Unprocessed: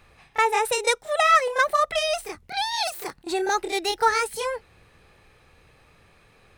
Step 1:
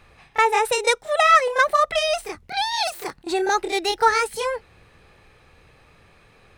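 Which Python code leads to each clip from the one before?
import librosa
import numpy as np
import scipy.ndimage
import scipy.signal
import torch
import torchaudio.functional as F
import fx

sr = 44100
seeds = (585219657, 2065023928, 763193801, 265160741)

y = fx.high_shelf(x, sr, hz=8800.0, db=-6.0)
y = F.gain(torch.from_numpy(y), 3.0).numpy()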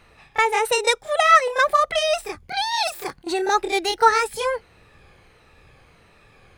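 y = fx.spec_ripple(x, sr, per_octave=1.9, drift_hz=-1.5, depth_db=6)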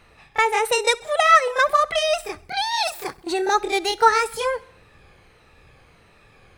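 y = fx.echo_feedback(x, sr, ms=66, feedback_pct=59, wet_db=-23.0)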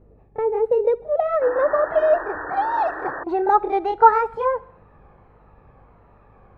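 y = fx.filter_sweep_lowpass(x, sr, from_hz=450.0, to_hz=980.0, start_s=0.66, end_s=3.42, q=1.8)
y = fx.spec_paint(y, sr, seeds[0], shape='noise', start_s=1.41, length_s=1.83, low_hz=280.0, high_hz=1900.0, level_db=-31.0)
y = fx.add_hum(y, sr, base_hz=50, snr_db=34)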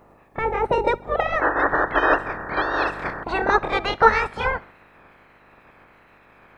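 y = fx.spec_clip(x, sr, under_db=29)
y = F.gain(torch.from_numpy(y), -1.0).numpy()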